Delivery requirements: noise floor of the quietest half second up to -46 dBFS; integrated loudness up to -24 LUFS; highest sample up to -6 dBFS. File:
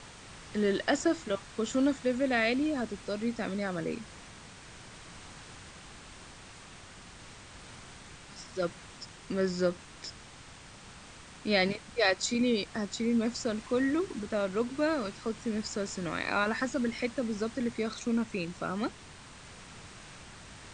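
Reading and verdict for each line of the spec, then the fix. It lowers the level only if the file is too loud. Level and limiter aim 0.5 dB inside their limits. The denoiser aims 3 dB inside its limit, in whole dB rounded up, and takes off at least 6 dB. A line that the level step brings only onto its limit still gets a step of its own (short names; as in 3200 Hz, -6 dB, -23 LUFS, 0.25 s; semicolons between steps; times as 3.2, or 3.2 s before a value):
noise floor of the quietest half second -50 dBFS: OK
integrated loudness -31.5 LUFS: OK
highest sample -13.0 dBFS: OK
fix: none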